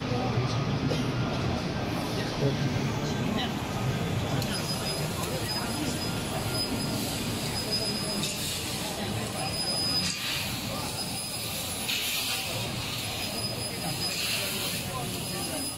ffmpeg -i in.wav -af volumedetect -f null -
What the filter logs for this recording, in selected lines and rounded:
mean_volume: -30.2 dB
max_volume: -13.1 dB